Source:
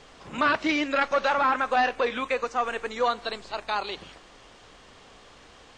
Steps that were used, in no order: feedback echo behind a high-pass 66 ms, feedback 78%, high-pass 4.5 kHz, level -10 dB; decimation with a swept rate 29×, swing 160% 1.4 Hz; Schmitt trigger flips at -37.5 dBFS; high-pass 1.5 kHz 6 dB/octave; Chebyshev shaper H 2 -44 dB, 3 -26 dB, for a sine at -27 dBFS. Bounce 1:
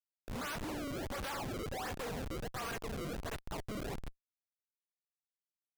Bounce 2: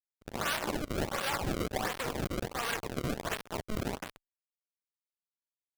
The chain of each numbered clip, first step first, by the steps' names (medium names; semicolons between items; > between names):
Chebyshev shaper > feedback echo behind a high-pass > decimation with a swept rate > high-pass > Schmitt trigger; feedback echo behind a high-pass > Schmitt trigger > Chebyshev shaper > high-pass > decimation with a swept rate